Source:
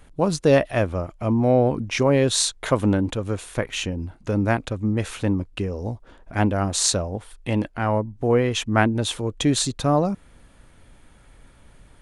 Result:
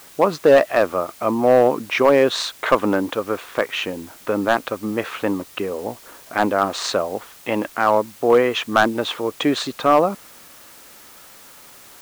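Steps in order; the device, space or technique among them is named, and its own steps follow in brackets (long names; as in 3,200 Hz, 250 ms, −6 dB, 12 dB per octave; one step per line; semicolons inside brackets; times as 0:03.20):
drive-through speaker (band-pass filter 370–2,800 Hz; parametric band 1,200 Hz +6 dB 0.34 octaves; hard clipping −13 dBFS, distortion −15 dB; white noise bed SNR 25 dB)
level +7 dB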